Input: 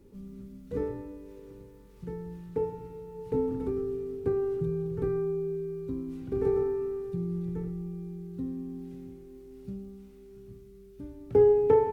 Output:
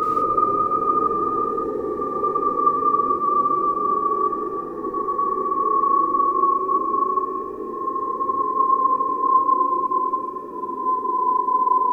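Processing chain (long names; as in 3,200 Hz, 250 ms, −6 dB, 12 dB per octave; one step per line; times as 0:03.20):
low-shelf EQ 370 Hz −8.5 dB
random phases in short frames
sound drawn into the spectrogram fall, 0:05.80–0:07.36, 830–1,700 Hz −22 dBFS
extreme stretch with random phases 27×, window 0.25 s, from 0:06.50
convolution reverb, pre-delay 23 ms, DRR −2 dB
phaser whose notches keep moving one way rising 0.32 Hz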